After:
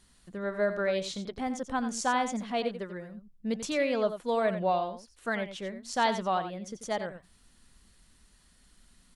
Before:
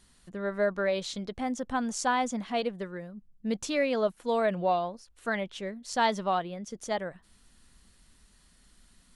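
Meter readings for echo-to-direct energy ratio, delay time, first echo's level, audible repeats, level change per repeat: −10.5 dB, 89 ms, −10.5 dB, 1, repeats not evenly spaced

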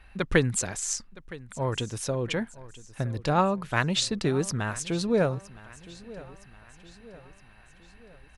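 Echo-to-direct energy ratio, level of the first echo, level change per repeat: −18.0 dB, −19.0 dB, −6.0 dB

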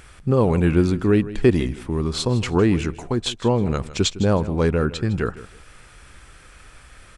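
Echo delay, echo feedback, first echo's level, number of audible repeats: 158 ms, 23%, −16.0 dB, 2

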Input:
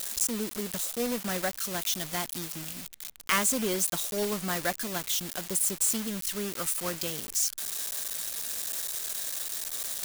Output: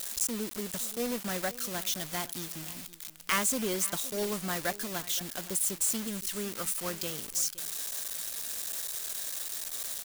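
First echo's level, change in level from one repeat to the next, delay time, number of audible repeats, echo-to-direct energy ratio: −17.5 dB, repeats not evenly spaced, 519 ms, 1, −17.5 dB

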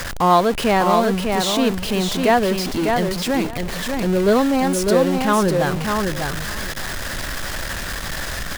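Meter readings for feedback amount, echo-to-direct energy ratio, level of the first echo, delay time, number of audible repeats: 16%, −4.5 dB, −4.5 dB, 600 ms, 2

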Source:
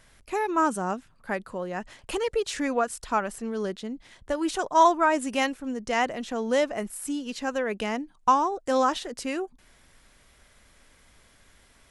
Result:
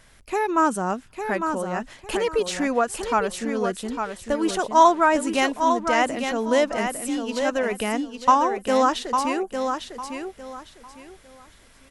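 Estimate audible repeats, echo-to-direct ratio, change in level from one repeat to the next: 3, −6.0 dB, −12.0 dB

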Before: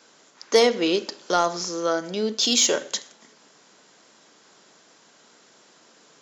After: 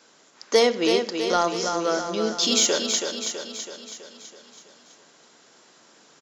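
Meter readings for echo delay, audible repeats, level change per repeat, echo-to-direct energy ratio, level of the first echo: 327 ms, 6, −5.0 dB, −4.5 dB, −6.0 dB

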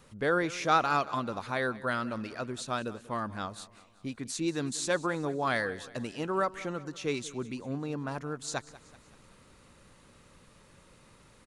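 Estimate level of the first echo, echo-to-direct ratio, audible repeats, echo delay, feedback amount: −18.5 dB, −17.0 dB, 3, 189 ms, 51%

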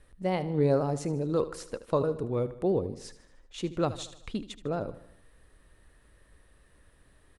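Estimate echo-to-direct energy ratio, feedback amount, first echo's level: −13.5 dB, 53%, −15.0 dB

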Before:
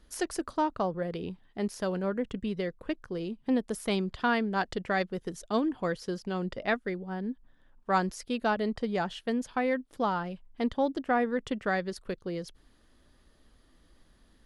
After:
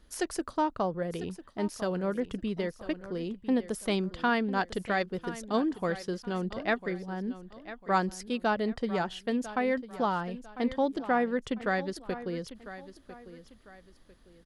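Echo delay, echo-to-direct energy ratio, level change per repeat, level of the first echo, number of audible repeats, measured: 999 ms, −14.0 dB, −9.5 dB, −14.5 dB, 2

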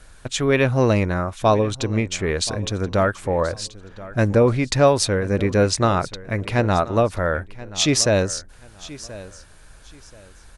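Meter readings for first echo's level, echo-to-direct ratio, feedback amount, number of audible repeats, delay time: −18.0 dB, −17.5 dB, 25%, 2, 1,030 ms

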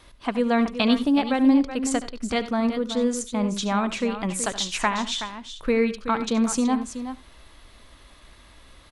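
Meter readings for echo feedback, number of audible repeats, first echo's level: repeats not evenly spaced, 3, −15.5 dB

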